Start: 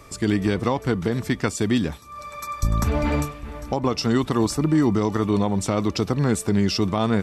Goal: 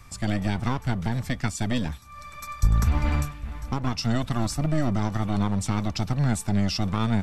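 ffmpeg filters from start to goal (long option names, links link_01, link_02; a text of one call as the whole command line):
ffmpeg -i in.wav -filter_complex "[0:a]lowshelf=frequency=110:gain=7.5,acrossover=split=270|930[link_01][link_02][link_03];[link_02]aeval=exprs='abs(val(0))':channel_layout=same[link_04];[link_01][link_04][link_03]amix=inputs=3:normalize=0,volume=-3.5dB" out.wav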